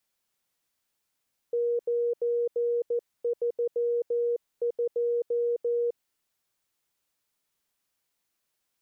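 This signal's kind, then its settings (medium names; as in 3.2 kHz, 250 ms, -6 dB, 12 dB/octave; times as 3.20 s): Morse "932" 14 wpm 475 Hz -23.5 dBFS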